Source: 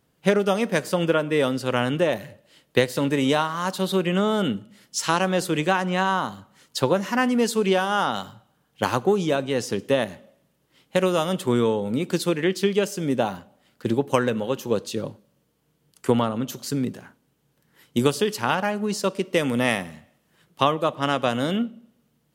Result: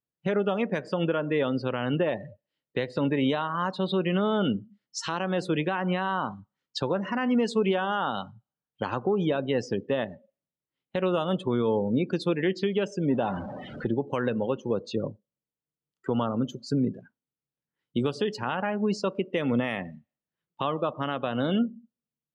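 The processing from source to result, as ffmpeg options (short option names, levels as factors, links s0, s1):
-filter_complex "[0:a]asettb=1/sr,asplit=3[s0][s1][s2];[s0]atrim=end=13.104[s3];[s1]atrim=start=13.1:end=13.87,asetpts=PTS-STARTPTS,afade=t=in:d=0.004:c=qsin,afade=t=out:st=0.766:d=0.004:c=qsin,aeval=exprs='val(0)+0.5*0.0316*sgn(val(0))':c=same[s4];[s2]atrim=start=13.866[s5];[s3][s4]acrossfade=d=0.004:c1=hsin:c2=qsin[s6];[s6][s5]acrossfade=d=0.004:c1=qsin:c2=hsin,afftdn=nr=29:nf=-34,lowpass=4400,alimiter=limit=0.158:level=0:latency=1:release=141"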